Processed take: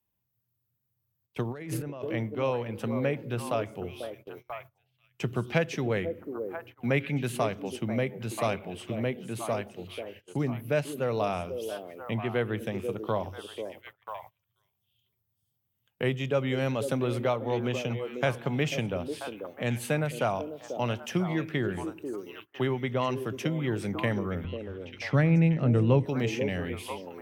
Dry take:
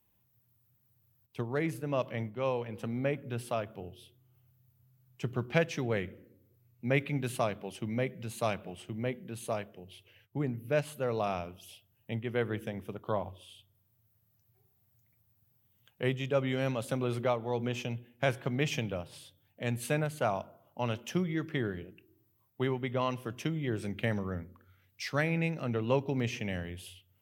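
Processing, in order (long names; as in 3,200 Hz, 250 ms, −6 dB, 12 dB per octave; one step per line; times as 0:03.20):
0:24.44–0:26.05: RIAA equalisation playback
on a send: echo through a band-pass that steps 491 ms, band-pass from 380 Hz, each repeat 1.4 octaves, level −6 dB
0:01.45–0:02.10: on the sum: compressor whose output falls as the input rises −42 dBFS, ratio −1
noise gate −54 dBFS, range −24 dB
multiband upward and downward compressor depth 40%
level +3 dB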